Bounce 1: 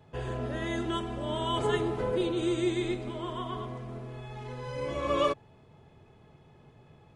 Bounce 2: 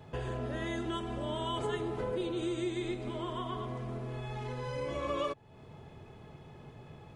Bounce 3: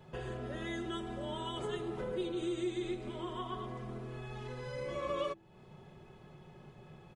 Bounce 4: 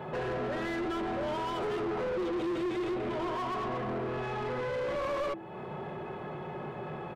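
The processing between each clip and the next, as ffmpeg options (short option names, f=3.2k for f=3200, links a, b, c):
-af "acompressor=threshold=-43dB:ratio=2.5,volume=5.5dB"
-af "aecho=1:1:5.4:0.52,bandreject=f=65.89:t=h:w=4,bandreject=f=131.78:t=h:w=4,bandreject=f=197.67:t=h:w=4,bandreject=f=263.56:t=h:w=4,bandreject=f=329.45:t=h:w=4,volume=-4dB"
-filter_complex "[0:a]equalizer=f=5.9k:t=o:w=1.6:g=-12.5,asplit=2[a][b];[b]highpass=f=720:p=1,volume=32dB,asoftclip=type=tanh:threshold=-25.5dB[c];[a][c]amix=inputs=2:normalize=0,lowpass=f=1.3k:p=1,volume=-6dB"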